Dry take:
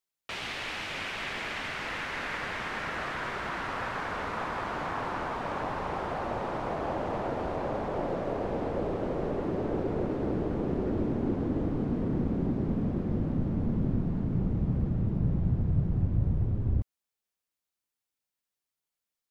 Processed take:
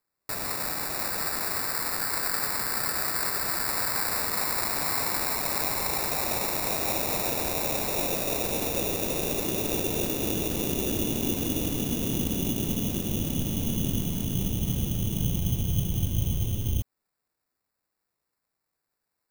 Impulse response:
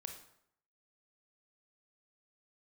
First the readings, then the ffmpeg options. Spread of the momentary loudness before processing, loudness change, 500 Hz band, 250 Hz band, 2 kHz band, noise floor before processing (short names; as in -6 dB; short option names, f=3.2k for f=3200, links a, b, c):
5 LU, +4.5 dB, 0.0 dB, 0.0 dB, +2.0 dB, under -85 dBFS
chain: -af "acrusher=samples=14:mix=1:aa=0.000001,aemphasis=mode=production:type=75kf"